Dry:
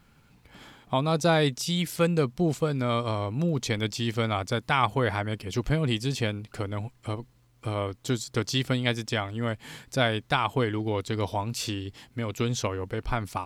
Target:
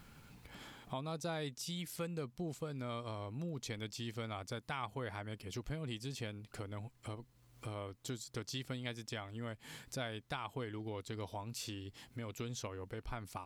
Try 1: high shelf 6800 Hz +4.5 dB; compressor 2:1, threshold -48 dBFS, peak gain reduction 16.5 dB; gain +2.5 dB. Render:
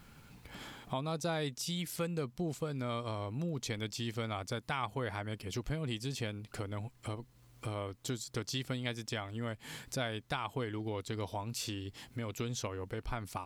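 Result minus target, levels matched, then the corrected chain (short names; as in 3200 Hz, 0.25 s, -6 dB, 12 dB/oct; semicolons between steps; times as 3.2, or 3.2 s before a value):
compressor: peak gain reduction -5 dB
high shelf 6800 Hz +4.5 dB; compressor 2:1, threshold -58 dBFS, peak gain reduction 21.5 dB; gain +2.5 dB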